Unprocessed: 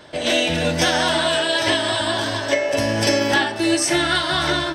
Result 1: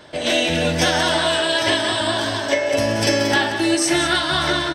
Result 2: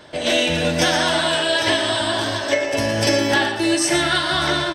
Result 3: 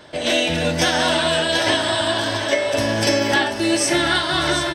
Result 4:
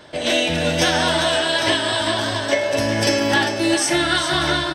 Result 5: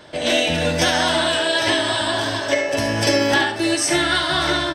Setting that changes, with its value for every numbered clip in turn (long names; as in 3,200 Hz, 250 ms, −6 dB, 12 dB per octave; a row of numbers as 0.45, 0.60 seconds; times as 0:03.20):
single-tap delay, delay time: 181, 117, 737, 400, 71 milliseconds